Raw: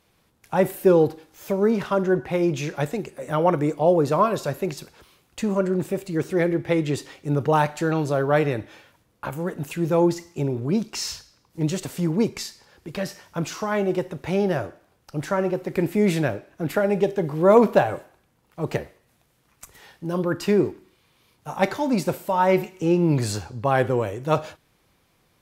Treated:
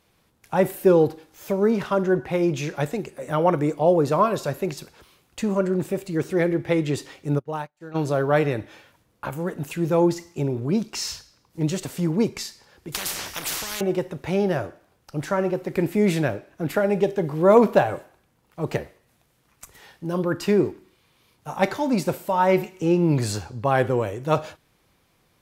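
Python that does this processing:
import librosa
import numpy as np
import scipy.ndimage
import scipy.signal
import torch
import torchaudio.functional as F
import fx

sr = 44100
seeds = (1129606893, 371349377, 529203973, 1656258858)

y = fx.upward_expand(x, sr, threshold_db=-39.0, expansion=2.5, at=(7.38, 7.94), fade=0.02)
y = fx.spectral_comp(y, sr, ratio=10.0, at=(12.92, 13.81))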